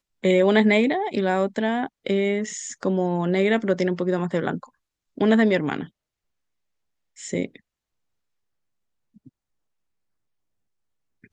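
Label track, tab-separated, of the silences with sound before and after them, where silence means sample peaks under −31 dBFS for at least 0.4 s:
4.640000	5.180000	silence
5.850000	7.210000	silence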